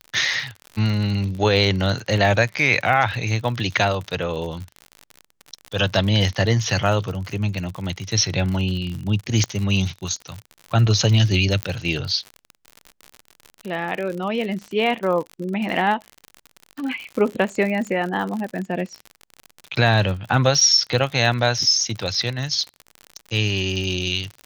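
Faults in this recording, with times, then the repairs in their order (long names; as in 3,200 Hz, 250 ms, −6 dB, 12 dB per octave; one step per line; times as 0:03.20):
surface crackle 60 per second −27 dBFS
0:09.44: click −10 dBFS
0:11.63: click −7 dBFS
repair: click removal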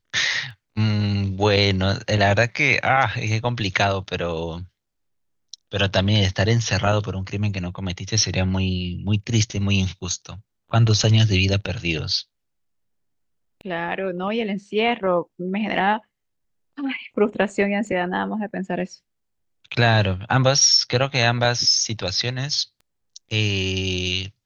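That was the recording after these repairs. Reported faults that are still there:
none of them is left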